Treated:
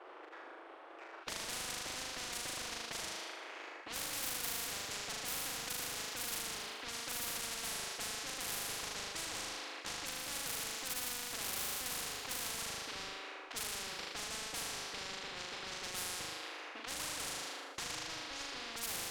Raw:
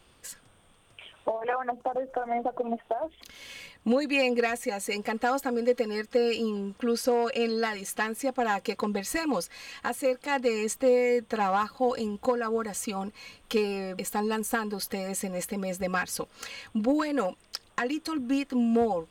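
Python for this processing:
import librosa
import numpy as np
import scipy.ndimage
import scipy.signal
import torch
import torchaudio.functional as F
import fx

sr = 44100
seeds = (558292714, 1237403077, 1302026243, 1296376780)

y = fx.dead_time(x, sr, dead_ms=0.15)
y = scipy.signal.sosfilt(scipy.signal.ellip(4, 1.0, 40, 330.0, 'highpass', fs=sr, output='sos'), y)
y = fx.env_lowpass(y, sr, base_hz=1600.0, full_db=-22.5)
y = fx.room_flutter(y, sr, wall_m=6.7, rt60_s=0.91)
y = 10.0 ** (-26.0 / 20.0) * np.tanh(y / 10.0 ** (-26.0 / 20.0))
y = fx.spectral_comp(y, sr, ratio=10.0)
y = y * 10.0 ** (8.0 / 20.0)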